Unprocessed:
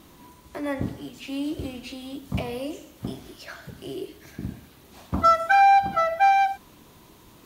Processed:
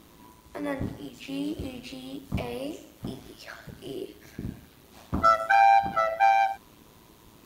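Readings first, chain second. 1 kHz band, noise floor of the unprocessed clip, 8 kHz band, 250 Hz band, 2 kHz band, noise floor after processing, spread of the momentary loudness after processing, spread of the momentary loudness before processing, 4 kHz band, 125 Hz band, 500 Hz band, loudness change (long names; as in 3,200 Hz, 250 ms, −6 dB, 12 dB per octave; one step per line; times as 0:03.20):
−2.5 dB, −52 dBFS, −2.5 dB, −3.0 dB, −2.5 dB, −55 dBFS, 21 LU, 22 LU, −2.5 dB, −3.0 dB, −1.5 dB, −2.5 dB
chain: amplitude modulation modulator 110 Hz, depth 40%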